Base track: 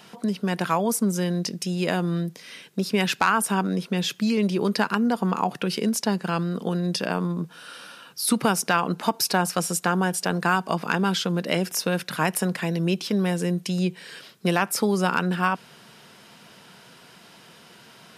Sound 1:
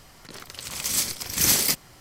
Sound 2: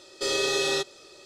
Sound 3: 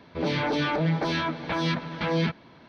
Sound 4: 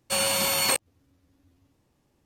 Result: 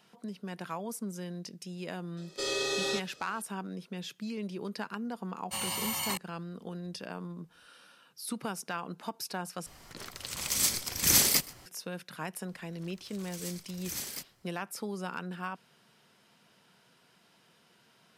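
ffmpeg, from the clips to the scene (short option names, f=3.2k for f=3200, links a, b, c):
-filter_complex "[1:a]asplit=2[a][b];[0:a]volume=-15dB[c];[4:a]aecho=1:1:1:0.71[d];[a]aecho=1:1:126:0.0794[e];[c]asplit=2[f][g];[f]atrim=end=9.664[h];[e]atrim=end=2,asetpts=PTS-STARTPTS,volume=-3dB[i];[g]atrim=start=11.656[j];[2:a]atrim=end=1.25,asetpts=PTS-STARTPTS,volume=-6dB,afade=t=in:d=0.004:c=hsin,afade=t=out:st=1.246:d=0.004:c=hsin,adelay=2170[k];[d]atrim=end=2.25,asetpts=PTS-STARTPTS,volume=-11dB,afade=t=in:d=0.004:c=hsin,afade=t=out:st=2.246:d=0.004:c=hsin,adelay=238581S[l];[b]atrim=end=2,asetpts=PTS-STARTPTS,volume=-18dB,afade=t=in:d=0.004:c=hsin,afade=t=out:st=1.996:d=0.004:c=hsin,adelay=12480[m];[h][i]acrossfade=d=0.004:c1=hsin:c2=hsin[n];[n][j]acrossfade=d=0.004:c1=hsin:c2=hsin[o];[o][k][l][m]amix=inputs=4:normalize=0"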